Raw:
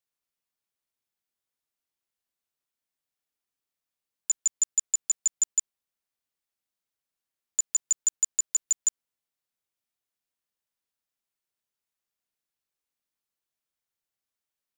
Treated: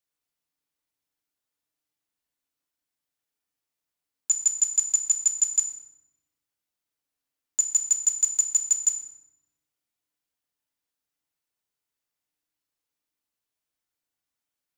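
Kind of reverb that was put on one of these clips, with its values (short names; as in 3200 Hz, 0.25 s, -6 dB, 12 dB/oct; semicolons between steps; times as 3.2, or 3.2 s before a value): FDN reverb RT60 0.92 s, low-frequency decay 1.5×, high-frequency decay 0.7×, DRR 3 dB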